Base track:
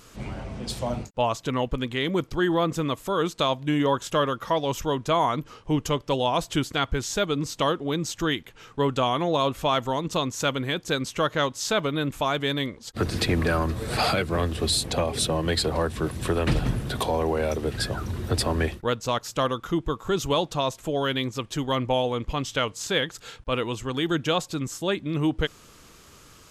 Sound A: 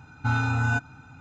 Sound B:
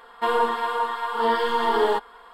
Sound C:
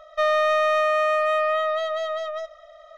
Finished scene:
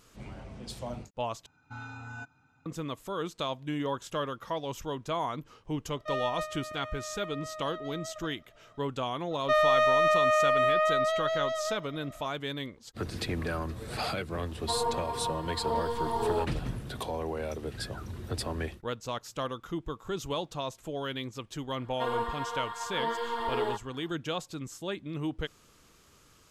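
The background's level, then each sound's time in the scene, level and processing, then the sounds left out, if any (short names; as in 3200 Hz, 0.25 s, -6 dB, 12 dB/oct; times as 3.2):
base track -9.5 dB
1.46 replace with A -16 dB + low shelf 110 Hz -10 dB
5.88 add C -12 dB + level quantiser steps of 10 dB
9.31 add C -3 dB
14.46 add B -8 dB + band shelf 2000 Hz -11.5 dB
21.78 add B -10.5 dB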